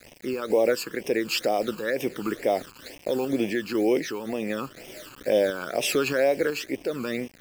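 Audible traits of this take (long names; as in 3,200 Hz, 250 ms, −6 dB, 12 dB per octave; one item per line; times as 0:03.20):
a quantiser's noise floor 8 bits, dither none
sample-and-hold tremolo 4 Hz
phaser sweep stages 12, 2.1 Hz, lowest notch 610–1,400 Hz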